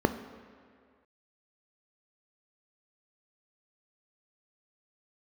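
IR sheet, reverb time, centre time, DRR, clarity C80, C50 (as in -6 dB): 2.0 s, 19 ms, 9.0 dB, 13.0 dB, 11.5 dB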